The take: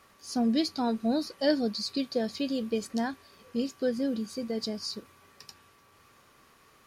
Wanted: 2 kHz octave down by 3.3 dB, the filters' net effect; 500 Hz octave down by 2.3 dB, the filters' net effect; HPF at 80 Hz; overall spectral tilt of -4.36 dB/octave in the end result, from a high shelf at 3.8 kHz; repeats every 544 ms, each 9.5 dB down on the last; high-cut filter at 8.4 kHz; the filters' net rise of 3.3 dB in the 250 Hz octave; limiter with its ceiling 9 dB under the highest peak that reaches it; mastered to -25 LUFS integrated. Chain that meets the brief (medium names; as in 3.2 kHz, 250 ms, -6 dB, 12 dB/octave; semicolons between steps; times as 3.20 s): high-pass 80 Hz; low-pass 8.4 kHz; peaking EQ 250 Hz +4.5 dB; peaking EQ 500 Hz -3.5 dB; peaking EQ 2 kHz -5.5 dB; treble shelf 3.8 kHz +6 dB; peak limiter -22 dBFS; feedback delay 544 ms, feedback 33%, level -9.5 dB; trim +6 dB